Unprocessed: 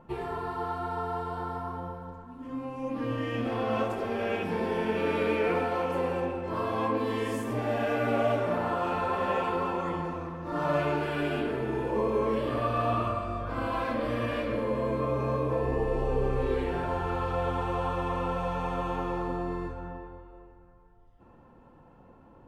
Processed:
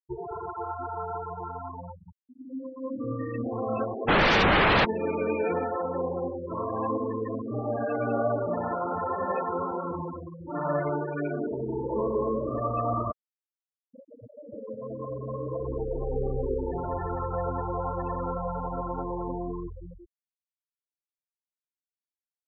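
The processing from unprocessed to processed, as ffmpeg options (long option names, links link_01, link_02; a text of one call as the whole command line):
ffmpeg -i in.wav -filter_complex "[0:a]asplit=3[link_01][link_02][link_03];[link_01]afade=type=out:start_time=4.07:duration=0.02[link_04];[link_02]aeval=exprs='0.141*sin(PI/2*7.08*val(0)/0.141)':channel_layout=same,afade=type=in:start_time=4.07:duration=0.02,afade=type=out:start_time=4.84:duration=0.02[link_05];[link_03]afade=type=in:start_time=4.84:duration=0.02[link_06];[link_04][link_05][link_06]amix=inputs=3:normalize=0,asplit=2[link_07][link_08];[link_07]atrim=end=13.12,asetpts=PTS-STARTPTS,afade=type=out:start_time=13.116:duration=0.004:curve=hsin[link_09];[link_08]atrim=start=13.12,asetpts=PTS-STARTPTS,afade=type=in:duration=3.6[link_10];[link_09][link_10]concat=n=2:v=0:a=1,afftfilt=real='re*gte(hypot(re,im),0.0631)':imag='im*gte(hypot(re,im),0.0631)':win_size=1024:overlap=0.75,lowpass=3800" out.wav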